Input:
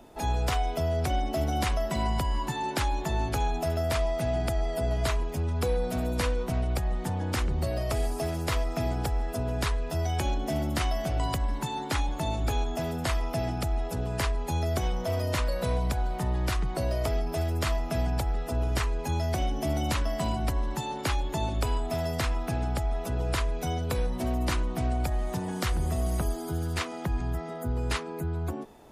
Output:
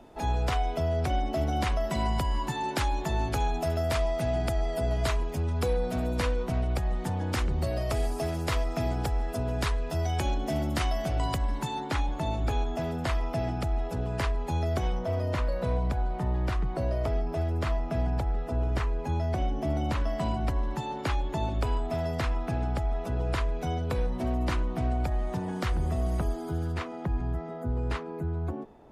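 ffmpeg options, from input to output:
ffmpeg -i in.wav -af "asetnsamples=nb_out_samples=441:pad=0,asendcmd='1.84 lowpass f 9400;5.73 lowpass f 4900;6.8 lowpass f 8200;11.8 lowpass f 3000;14.99 lowpass f 1500;20 lowpass f 2500;26.72 lowpass f 1200',lowpass=frequency=3900:poles=1" out.wav

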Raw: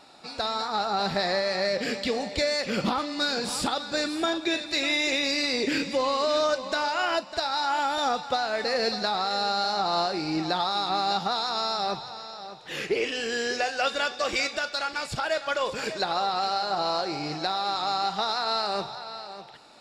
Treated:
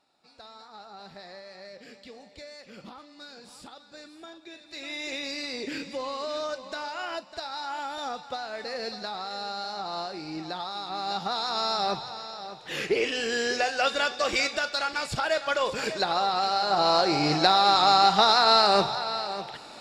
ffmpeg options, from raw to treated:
ffmpeg -i in.wav -af "volume=8dB,afade=type=in:start_time=4.58:duration=0.57:silence=0.281838,afade=type=in:start_time=10.9:duration=0.84:silence=0.354813,afade=type=in:start_time=16.53:duration=0.78:silence=0.446684" out.wav

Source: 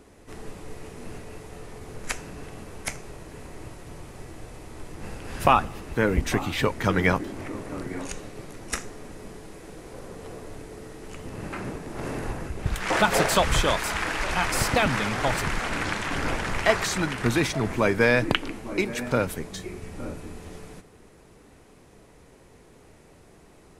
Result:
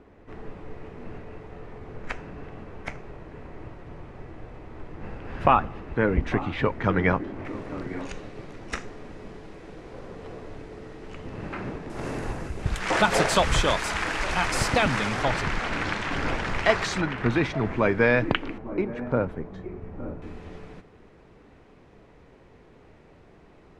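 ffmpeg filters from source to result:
ffmpeg -i in.wav -af "asetnsamples=nb_out_samples=441:pad=0,asendcmd='7.45 lowpass f 3800;11.9 lowpass f 8300;15.23 lowpass f 5100;17.01 lowpass f 2700;18.58 lowpass f 1200;20.22 lowpass f 3200',lowpass=2200" out.wav

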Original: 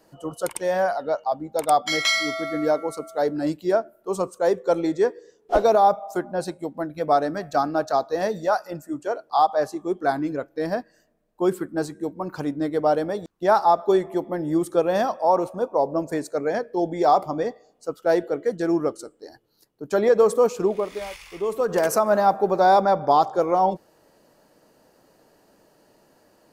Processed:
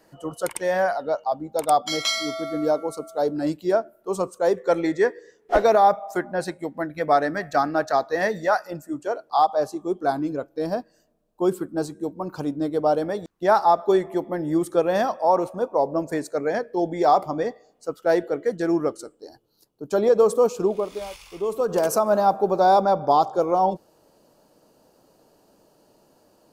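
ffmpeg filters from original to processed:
ffmpeg -i in.wav -af "asetnsamples=nb_out_samples=441:pad=0,asendcmd='0.97 equalizer g -4;1.78 equalizer g -11.5;3.39 equalizer g -1;4.57 equalizer g 10.5;8.66 equalizer g -1;9.44 equalizer g -9.5;13.02 equalizer g 2;19.15 equalizer g -10',equalizer=frequency=1900:width_type=o:width=0.58:gain=4.5" out.wav

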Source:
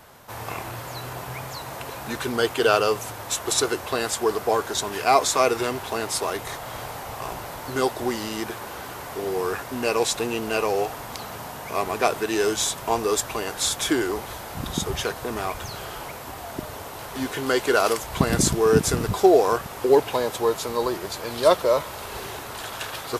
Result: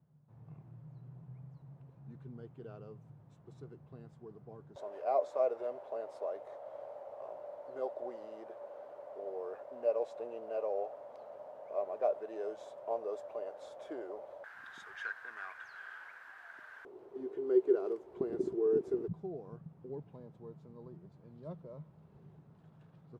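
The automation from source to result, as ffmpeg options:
ffmpeg -i in.wav -af "asetnsamples=nb_out_samples=441:pad=0,asendcmd='4.76 bandpass f 580;14.44 bandpass f 1600;16.85 bandpass f 380;19.08 bandpass f 160',bandpass=frequency=150:width_type=q:width=11:csg=0" out.wav

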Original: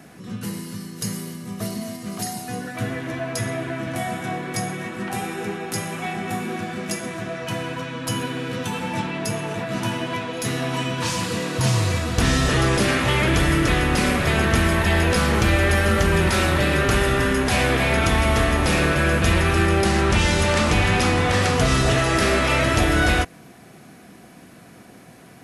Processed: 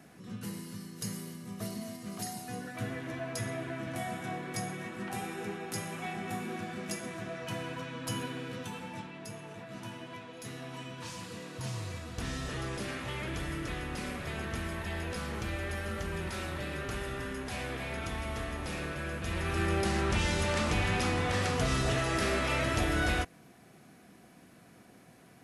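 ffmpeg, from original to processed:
ffmpeg -i in.wav -af "volume=-3dB,afade=type=out:start_time=8.18:duration=0.92:silence=0.398107,afade=type=in:start_time=19.25:duration=0.46:silence=0.446684" out.wav

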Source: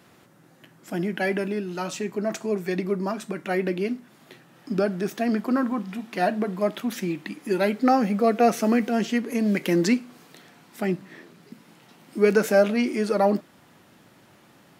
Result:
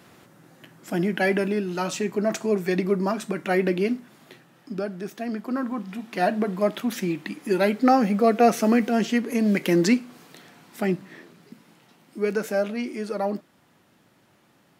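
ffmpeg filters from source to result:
ffmpeg -i in.wav -af "volume=10.5dB,afade=type=out:start_time=3.95:duration=0.8:silence=0.354813,afade=type=in:start_time=5.39:duration=1.02:silence=0.421697,afade=type=out:start_time=10.84:duration=1.34:silence=0.421697" out.wav

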